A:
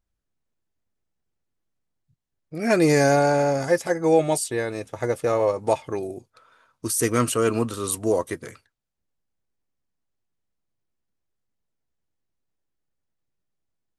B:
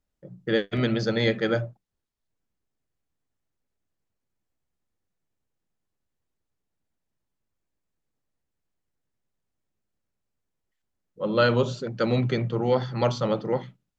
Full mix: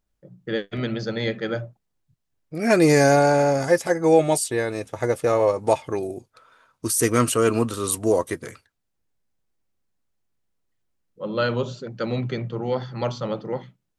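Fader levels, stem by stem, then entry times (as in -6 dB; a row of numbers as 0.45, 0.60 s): +2.0, -2.5 dB; 0.00, 0.00 s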